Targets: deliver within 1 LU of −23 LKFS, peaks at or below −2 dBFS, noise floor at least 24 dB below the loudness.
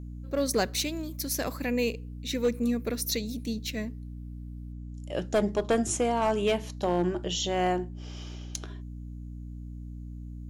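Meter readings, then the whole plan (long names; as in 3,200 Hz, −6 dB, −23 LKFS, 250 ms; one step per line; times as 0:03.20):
share of clipped samples 0.4%; peaks flattened at −18.0 dBFS; mains hum 60 Hz; hum harmonics up to 300 Hz; level of the hum −37 dBFS; integrated loudness −29.5 LKFS; sample peak −18.0 dBFS; target loudness −23.0 LKFS
→ clipped peaks rebuilt −18 dBFS
hum removal 60 Hz, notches 5
level +6.5 dB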